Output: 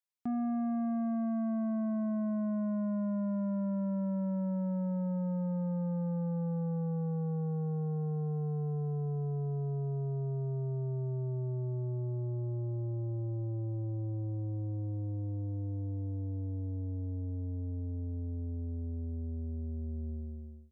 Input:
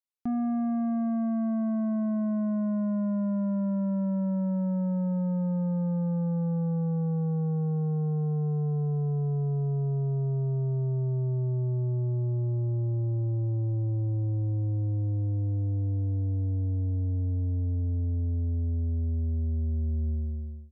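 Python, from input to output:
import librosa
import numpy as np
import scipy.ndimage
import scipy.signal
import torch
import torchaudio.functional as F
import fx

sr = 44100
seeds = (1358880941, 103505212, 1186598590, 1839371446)

y = fx.highpass(x, sr, hz=160.0, slope=6)
y = y * 10.0 ** (-3.0 / 20.0)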